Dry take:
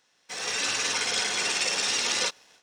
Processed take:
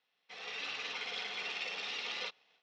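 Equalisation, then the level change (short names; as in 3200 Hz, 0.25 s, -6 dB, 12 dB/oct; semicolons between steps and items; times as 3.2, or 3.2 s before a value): speaker cabinet 220–3700 Hz, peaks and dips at 240 Hz -6 dB, 340 Hz -10 dB, 570 Hz -6 dB, 970 Hz -6 dB, 1600 Hz -9 dB; -8.0 dB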